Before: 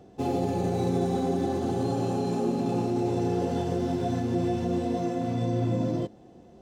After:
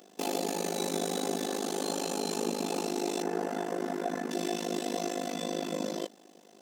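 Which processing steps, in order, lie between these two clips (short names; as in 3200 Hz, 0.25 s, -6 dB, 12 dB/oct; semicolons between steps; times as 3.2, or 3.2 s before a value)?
AM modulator 51 Hz, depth 95%; brick-wall FIR high-pass 160 Hz; tilt +4 dB/oct; notch 800 Hz, Q 12; 3.22–4.31 resonant high shelf 2400 Hz -10 dB, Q 1.5; gain +4.5 dB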